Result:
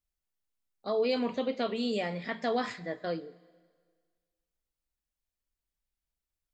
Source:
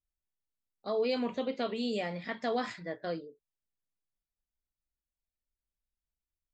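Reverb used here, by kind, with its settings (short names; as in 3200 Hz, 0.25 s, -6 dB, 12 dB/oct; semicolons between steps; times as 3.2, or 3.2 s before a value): Schroeder reverb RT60 1.7 s, combs from 31 ms, DRR 19 dB; gain +2 dB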